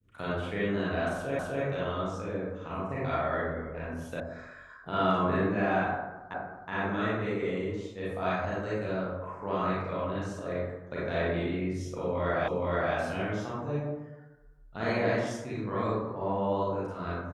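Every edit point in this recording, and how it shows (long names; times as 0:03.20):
0:01.39: the same again, the last 0.25 s
0:04.20: cut off before it has died away
0:06.34: the same again, the last 0.37 s
0:12.48: the same again, the last 0.47 s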